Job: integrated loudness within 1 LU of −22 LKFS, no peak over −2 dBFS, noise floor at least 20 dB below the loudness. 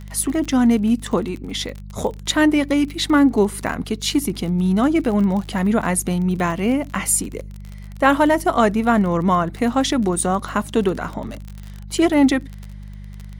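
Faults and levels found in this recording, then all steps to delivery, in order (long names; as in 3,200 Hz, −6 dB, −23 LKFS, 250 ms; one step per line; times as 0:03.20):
crackle rate 39 per second; mains hum 50 Hz; hum harmonics up to 200 Hz; level of the hum −31 dBFS; integrated loudness −19.5 LKFS; sample peak −2.0 dBFS; target loudness −22.0 LKFS
→ click removal
hum removal 50 Hz, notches 4
level −2.5 dB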